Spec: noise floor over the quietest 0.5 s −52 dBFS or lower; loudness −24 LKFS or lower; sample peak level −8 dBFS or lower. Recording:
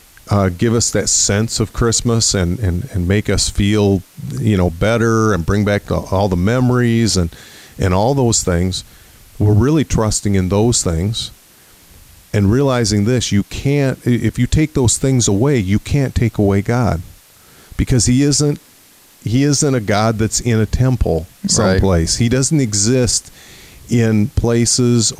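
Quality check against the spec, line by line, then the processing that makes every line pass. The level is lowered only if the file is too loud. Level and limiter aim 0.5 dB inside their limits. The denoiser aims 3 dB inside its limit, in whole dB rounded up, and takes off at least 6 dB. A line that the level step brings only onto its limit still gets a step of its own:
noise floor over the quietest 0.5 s −47 dBFS: out of spec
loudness −15.0 LKFS: out of spec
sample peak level −4.5 dBFS: out of spec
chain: level −9.5 dB

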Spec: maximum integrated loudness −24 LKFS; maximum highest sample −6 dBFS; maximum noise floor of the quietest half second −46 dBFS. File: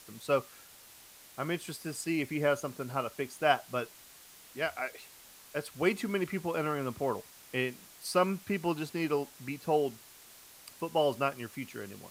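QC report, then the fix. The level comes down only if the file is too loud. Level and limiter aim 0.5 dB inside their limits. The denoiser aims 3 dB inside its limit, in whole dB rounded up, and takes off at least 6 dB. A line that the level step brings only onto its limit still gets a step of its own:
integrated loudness −33.0 LKFS: in spec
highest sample −11.0 dBFS: in spec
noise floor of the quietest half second −55 dBFS: in spec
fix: no processing needed

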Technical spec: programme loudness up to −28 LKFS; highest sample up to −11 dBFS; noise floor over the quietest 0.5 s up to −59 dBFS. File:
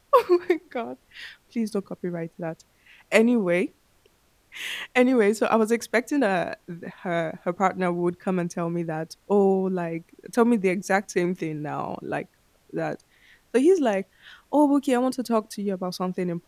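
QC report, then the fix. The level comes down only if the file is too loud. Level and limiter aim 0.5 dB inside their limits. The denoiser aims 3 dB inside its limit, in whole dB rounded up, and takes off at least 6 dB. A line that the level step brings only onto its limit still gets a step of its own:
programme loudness −25.0 LKFS: out of spec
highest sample −3.5 dBFS: out of spec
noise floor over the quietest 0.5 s −62 dBFS: in spec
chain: level −3.5 dB
brickwall limiter −11.5 dBFS

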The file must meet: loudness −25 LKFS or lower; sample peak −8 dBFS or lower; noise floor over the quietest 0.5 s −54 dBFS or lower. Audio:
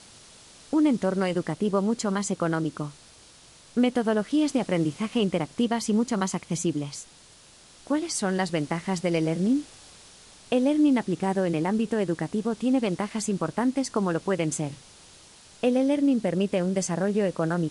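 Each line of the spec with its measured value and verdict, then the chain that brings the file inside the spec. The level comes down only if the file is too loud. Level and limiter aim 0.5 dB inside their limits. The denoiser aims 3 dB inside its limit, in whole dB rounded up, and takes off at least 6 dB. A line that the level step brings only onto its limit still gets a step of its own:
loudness −26.0 LKFS: in spec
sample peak −10.5 dBFS: in spec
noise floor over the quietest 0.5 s −53 dBFS: out of spec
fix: broadband denoise 6 dB, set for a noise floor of −53 dBFS

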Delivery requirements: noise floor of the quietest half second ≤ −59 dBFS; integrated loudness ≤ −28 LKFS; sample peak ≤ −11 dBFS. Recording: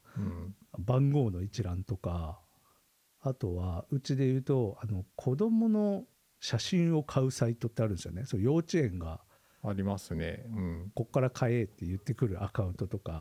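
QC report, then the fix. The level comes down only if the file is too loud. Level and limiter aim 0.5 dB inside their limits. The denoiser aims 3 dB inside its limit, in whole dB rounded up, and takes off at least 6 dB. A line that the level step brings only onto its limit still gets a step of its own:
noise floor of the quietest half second −70 dBFS: in spec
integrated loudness −32.5 LKFS: in spec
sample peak −14.5 dBFS: in spec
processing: no processing needed

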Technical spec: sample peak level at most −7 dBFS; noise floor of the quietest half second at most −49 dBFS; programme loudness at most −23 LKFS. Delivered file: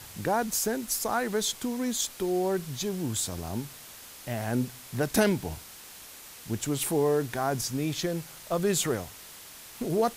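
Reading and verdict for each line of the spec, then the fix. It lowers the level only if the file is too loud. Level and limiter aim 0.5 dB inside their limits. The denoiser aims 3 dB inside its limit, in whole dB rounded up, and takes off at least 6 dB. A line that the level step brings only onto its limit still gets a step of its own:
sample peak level −11.5 dBFS: in spec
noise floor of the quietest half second −47 dBFS: out of spec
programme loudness −29.5 LKFS: in spec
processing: broadband denoise 6 dB, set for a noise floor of −47 dBFS

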